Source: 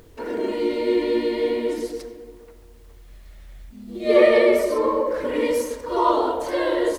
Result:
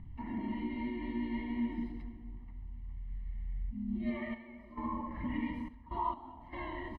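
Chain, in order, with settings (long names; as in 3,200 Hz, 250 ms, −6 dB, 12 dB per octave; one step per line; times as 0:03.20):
high-frequency loss of the air 480 metres
downward compressor 6 to 1, threshold −21 dBFS, peak gain reduction 10 dB
comb filter 1 ms, depth 93%
0:04.33–0:06.52: gate pattern "x.x..xxx" 66 BPM −12 dB
drawn EQ curve 230 Hz 0 dB, 420 Hz −23 dB, 890 Hz −10 dB, 1,400 Hz −18 dB, 2,100 Hz −6 dB, 4,800 Hz −16 dB
level −1 dB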